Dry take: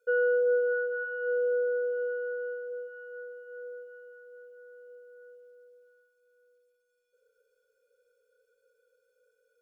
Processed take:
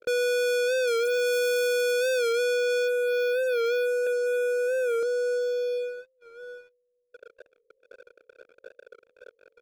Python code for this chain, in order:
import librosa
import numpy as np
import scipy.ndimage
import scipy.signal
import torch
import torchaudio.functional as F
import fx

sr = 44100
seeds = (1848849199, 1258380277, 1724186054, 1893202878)

p1 = scipy.signal.sosfilt(scipy.signal.butter(12, 640.0, 'lowpass', fs=sr, output='sos'), x)
p2 = fx.leveller(p1, sr, passes=3, at=(0.88, 2.33))
p3 = fx.comb(p2, sr, ms=5.6, depth=0.85, at=(4.06, 5.03))
p4 = fx.over_compress(p3, sr, threshold_db=-35.0, ratio=-0.5)
p5 = p3 + (p4 * librosa.db_to_amplitude(-2.0))
p6 = fx.leveller(p5, sr, passes=5)
p7 = 10.0 ** (-28.0 / 20.0) * np.tanh(p6 / 10.0 ** (-28.0 / 20.0))
p8 = fx.record_warp(p7, sr, rpm=45.0, depth_cents=100.0)
y = p8 * librosa.db_to_amplitude(4.0)